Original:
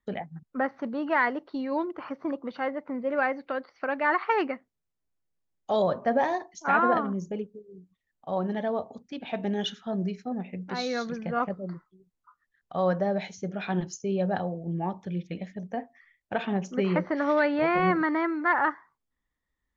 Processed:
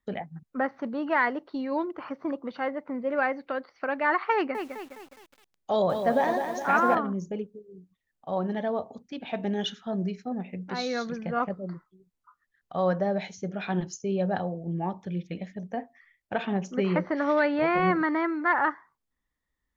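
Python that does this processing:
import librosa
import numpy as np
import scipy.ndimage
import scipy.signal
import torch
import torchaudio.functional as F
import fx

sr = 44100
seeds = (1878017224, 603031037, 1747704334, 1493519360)

y = fx.echo_crushed(x, sr, ms=207, feedback_pct=55, bits=8, wet_db=-6.5, at=(4.34, 6.95))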